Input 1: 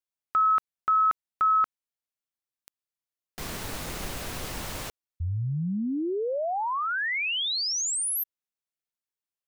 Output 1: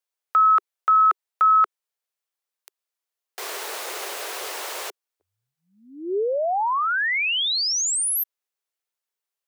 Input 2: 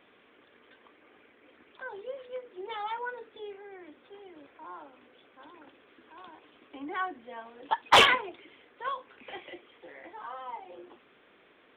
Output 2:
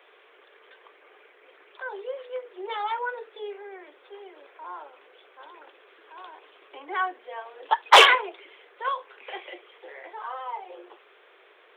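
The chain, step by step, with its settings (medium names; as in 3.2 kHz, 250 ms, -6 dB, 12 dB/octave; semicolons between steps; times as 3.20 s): elliptic high-pass 390 Hz, stop band 60 dB; trim +6 dB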